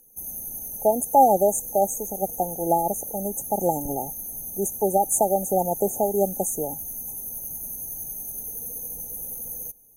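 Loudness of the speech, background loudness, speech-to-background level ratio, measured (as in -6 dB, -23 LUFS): -24.0 LUFS, -31.5 LUFS, 7.5 dB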